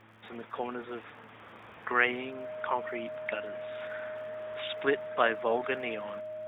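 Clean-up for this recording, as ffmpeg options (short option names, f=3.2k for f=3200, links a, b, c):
-af "adeclick=t=4,bandreject=f=110.6:t=h:w=4,bandreject=f=221.2:t=h:w=4,bandreject=f=331.8:t=h:w=4,bandreject=f=620:w=30"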